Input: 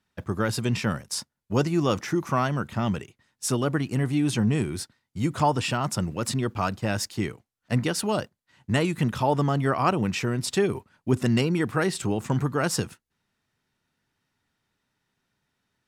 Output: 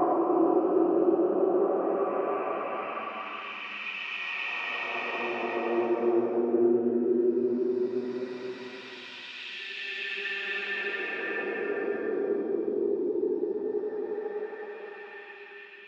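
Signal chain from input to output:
moving average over 5 samples
low shelf with overshoot 200 Hz −6 dB, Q 3
reverb whose tail is shaped and stops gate 420 ms flat, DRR 8 dB
LFO wah 2.3 Hz 330–3,000 Hz, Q 7.9
extreme stretch with random phases 14×, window 0.25 s, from 0:09.83
level +8.5 dB

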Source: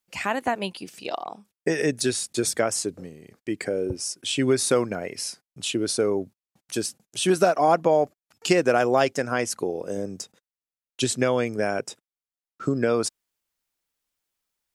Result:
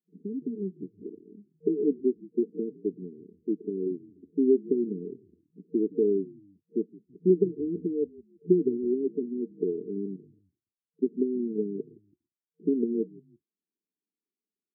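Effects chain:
brick-wall band-pass 170–460 Hz
echo with shifted repeats 165 ms, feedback 31%, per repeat −48 Hz, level −21.5 dB

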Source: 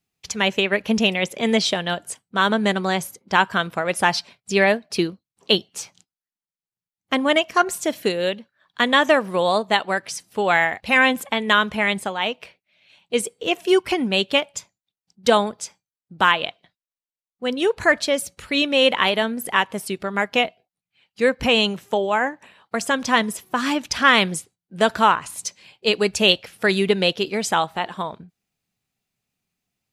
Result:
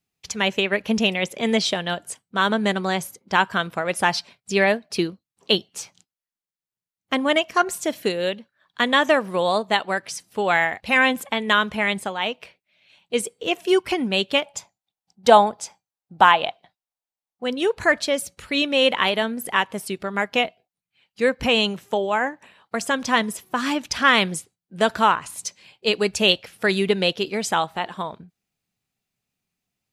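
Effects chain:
0:14.46–0:17.44: parametric band 790 Hz +11.5 dB 0.65 octaves
level −1.5 dB

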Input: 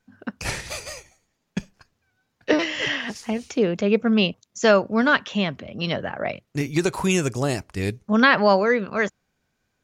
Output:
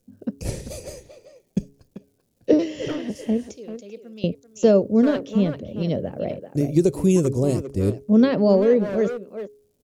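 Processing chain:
0:03.56–0:04.24: first-order pre-emphasis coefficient 0.97
hum removal 138.9 Hz, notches 3
surface crackle 380 per second −53 dBFS
drawn EQ curve 530 Hz 0 dB, 820 Hz −16 dB, 1,500 Hz −24 dB, 10,000 Hz −6 dB
far-end echo of a speakerphone 390 ms, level −8 dB
level +4.5 dB

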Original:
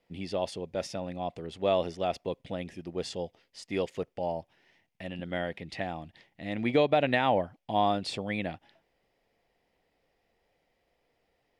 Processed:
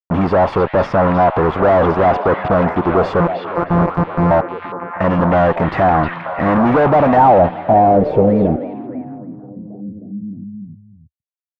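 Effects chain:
0:03.20–0:04.31: samples sorted by size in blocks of 256 samples
fuzz pedal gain 48 dB, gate −48 dBFS
echo through a band-pass that steps 313 ms, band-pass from 2,900 Hz, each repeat −0.7 octaves, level −1 dB
low-pass filter sweep 1,100 Hz → 230 Hz, 0:06.89–0:09.47
level +1 dB

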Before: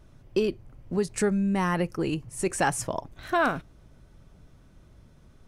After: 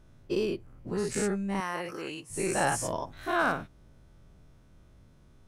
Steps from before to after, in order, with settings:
every bin's largest magnitude spread in time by 120 ms
0:01.60–0:02.30: high-pass filter 640 Hz 6 dB per octave
level −8 dB

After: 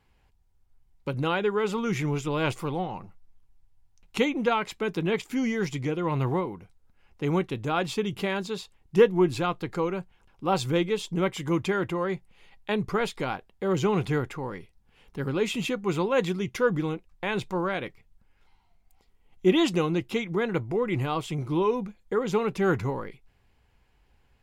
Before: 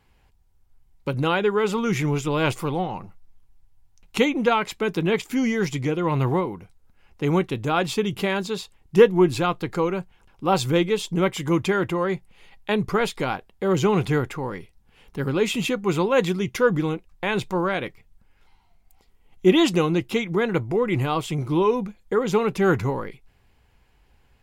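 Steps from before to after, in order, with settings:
high-shelf EQ 11,000 Hz −5.5 dB
level −4.5 dB

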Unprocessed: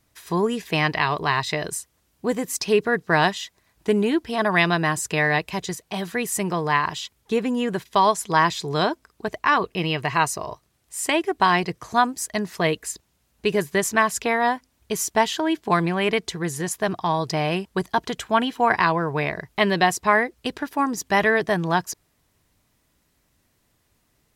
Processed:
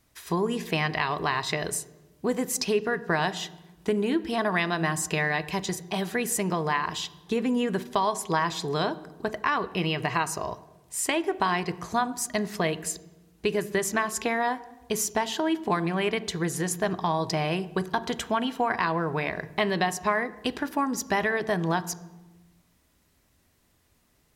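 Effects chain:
downward compressor 3 to 1, threshold −24 dBFS, peak gain reduction 9 dB
on a send: convolution reverb RT60 1.2 s, pre-delay 3 ms, DRR 13.5 dB

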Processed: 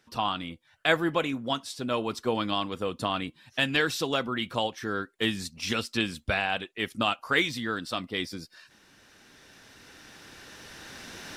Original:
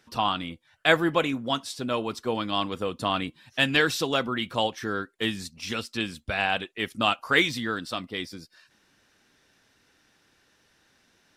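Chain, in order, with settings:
camcorder AGC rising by 6.7 dB per second
level −3.5 dB

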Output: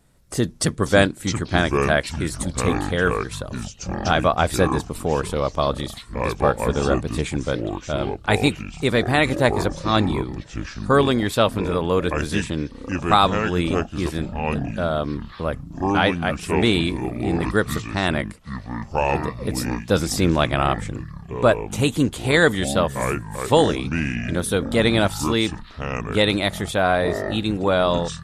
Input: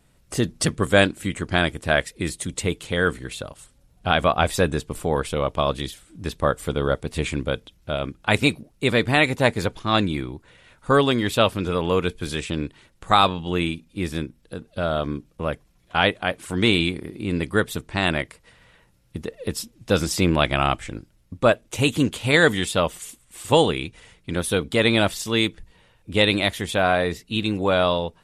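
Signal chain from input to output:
parametric band 2,700 Hz −5.5 dB 0.66 octaves
delay with pitch and tempo change per echo 405 ms, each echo −6 semitones, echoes 3, each echo −6 dB
level +1 dB

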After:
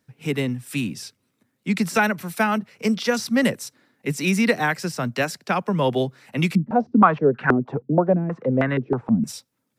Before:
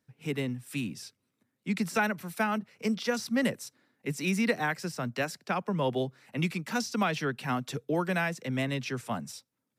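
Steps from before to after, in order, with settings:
0:06.55–0:09.24: low-pass on a step sequencer 6.3 Hz 220–1,500 Hz
level +8 dB

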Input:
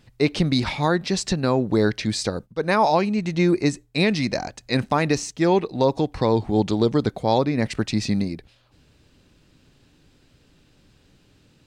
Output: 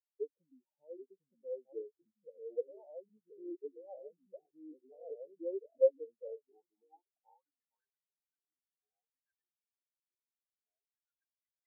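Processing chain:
delay with pitch and tempo change per echo 752 ms, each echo −2 semitones, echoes 2
downward compressor 6 to 1, threshold −21 dBFS, peak gain reduction 9 dB
soft clipping −22 dBFS, distortion −13 dB
band-pass filter sweep 520 Hz → 1,700 Hz, 0:06.18–0:07.91
every bin expanded away from the loudest bin 4 to 1
level +6 dB

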